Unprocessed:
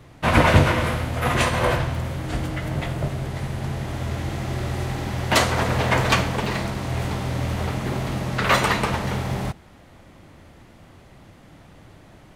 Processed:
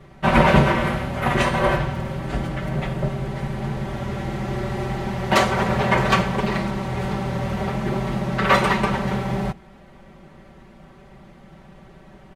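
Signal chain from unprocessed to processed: treble shelf 3.5 kHz -10.5 dB; comb 5.2 ms, depth 97%

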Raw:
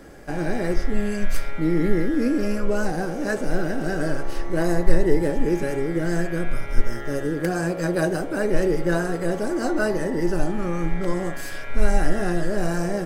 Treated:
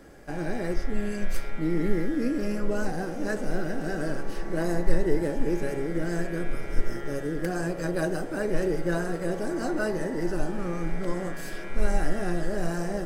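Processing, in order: on a send: echo that smears into a reverb 618 ms, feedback 73%, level -14.5 dB; on the sum: trim -5.5 dB

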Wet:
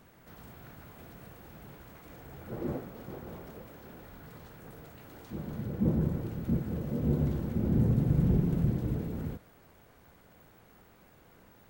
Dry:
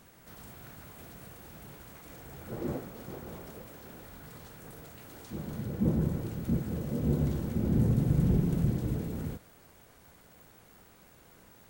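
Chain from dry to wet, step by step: peaking EQ 8.9 kHz -9 dB 2.1 oct

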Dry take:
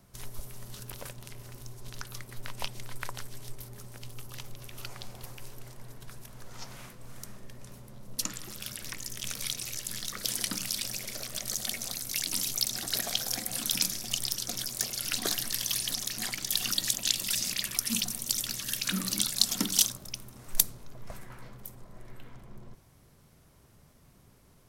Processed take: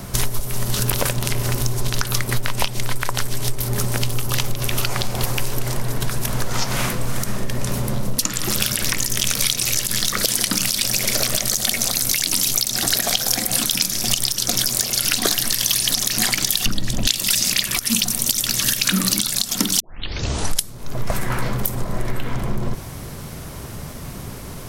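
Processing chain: 16.66–17.07 s: tilt EQ -4 dB/octave; 19.80 s: tape start 0.91 s; compression 10:1, threshold -42 dBFS, peak gain reduction 25.5 dB; loudness maximiser +28 dB; trim -1 dB

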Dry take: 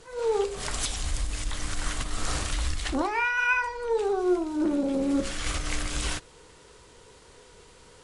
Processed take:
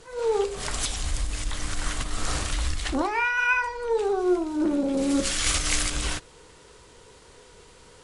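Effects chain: 4.97–5.90 s: treble shelf 2.5 kHz +10.5 dB; trim +1.5 dB

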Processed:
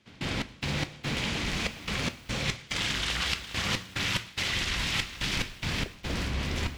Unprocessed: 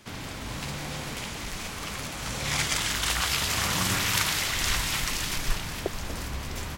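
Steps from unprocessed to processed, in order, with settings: peak limiter -17 dBFS, peak gain reduction 8 dB; frequency weighting D; trance gate ".x.x.xxx" 72 bpm -24 dB; tilt EQ -3.5 dB/octave; two-slope reverb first 0.32 s, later 2.2 s, DRR 14 dB; reverse; compression 6:1, threshold -36 dBFS, peak gain reduction 13.5 dB; reverse; bit-crushed delay 411 ms, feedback 35%, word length 9-bit, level -12 dB; trim +8 dB

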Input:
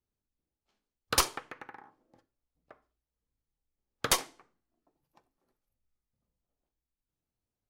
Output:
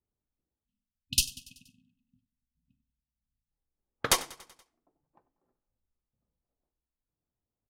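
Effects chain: level-controlled noise filter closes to 1.2 kHz, open at -31 dBFS; Chebyshev shaper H 7 -31 dB, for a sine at -12.5 dBFS; spectral selection erased 0.64–3.51 s, 260–2500 Hz; on a send: feedback delay 95 ms, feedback 59%, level -20 dB; on the sum: trim +2 dB

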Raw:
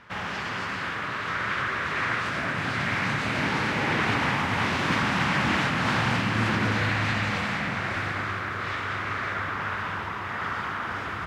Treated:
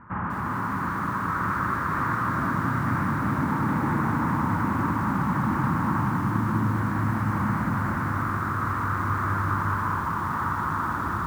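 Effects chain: low-pass 1.2 kHz 24 dB/octave; high-order bell 550 Hz -11.5 dB 1.2 oct; compression 12:1, threshold -30 dBFS, peak gain reduction 9 dB; bit-crushed delay 202 ms, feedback 80%, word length 9-bit, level -7 dB; trim +8 dB

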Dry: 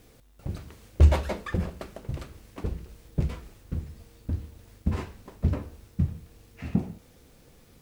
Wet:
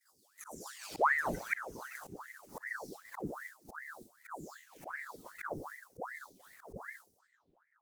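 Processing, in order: delay that grows with frequency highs early, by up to 628 ms; expander -43 dBFS; FFT filter 190 Hz 0 dB, 1.2 kHz -20 dB, 2.9 kHz -14 dB, 6 kHz +6 dB; slow attack 511 ms; thinning echo 60 ms, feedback 57%, level -16.5 dB; ring modulator with a swept carrier 1.1 kHz, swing 80%, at 2.6 Hz; trim +7.5 dB

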